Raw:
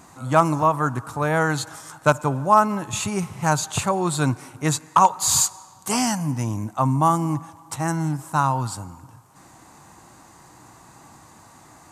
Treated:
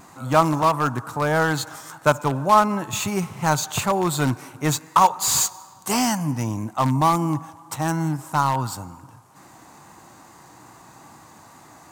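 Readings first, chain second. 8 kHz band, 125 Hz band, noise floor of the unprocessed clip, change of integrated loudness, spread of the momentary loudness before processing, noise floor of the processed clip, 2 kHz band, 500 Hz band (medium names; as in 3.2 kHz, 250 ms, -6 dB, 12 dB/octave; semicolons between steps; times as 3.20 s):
-1.0 dB, -0.5 dB, -50 dBFS, 0.0 dB, 10 LU, -49 dBFS, +1.0 dB, +0.5 dB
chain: bass shelf 71 Hz -11.5 dB; in parallel at -11.5 dB: integer overflow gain 15 dB; on the sum: wow and flutter 29 cents; decimation joined by straight lines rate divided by 2×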